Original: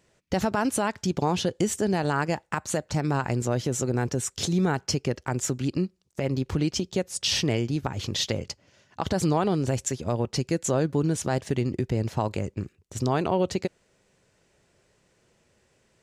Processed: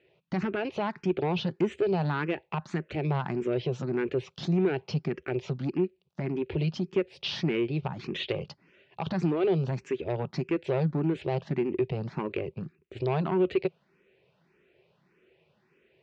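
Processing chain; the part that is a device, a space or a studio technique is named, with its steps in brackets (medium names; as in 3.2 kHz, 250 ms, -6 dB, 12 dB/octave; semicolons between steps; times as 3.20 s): barber-pole phaser into a guitar amplifier (barber-pole phaser +1.7 Hz; saturation -24 dBFS, distortion -14 dB; cabinet simulation 90–3700 Hz, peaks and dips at 97 Hz -9 dB, 160 Hz +7 dB, 260 Hz -3 dB, 380 Hz +9 dB, 2.5 kHz +7 dB)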